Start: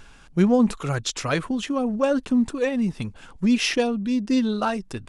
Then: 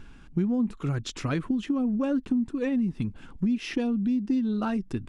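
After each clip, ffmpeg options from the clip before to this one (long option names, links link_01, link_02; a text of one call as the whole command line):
ffmpeg -i in.wav -af "lowshelf=frequency=400:width_type=q:width=1.5:gain=8.5,acompressor=threshold=-18dB:ratio=6,bass=frequency=250:gain=-2,treble=frequency=4000:gain=-7,volume=-4.5dB" out.wav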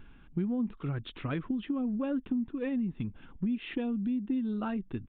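ffmpeg -i in.wav -af "aresample=8000,aresample=44100,volume=-5.5dB" out.wav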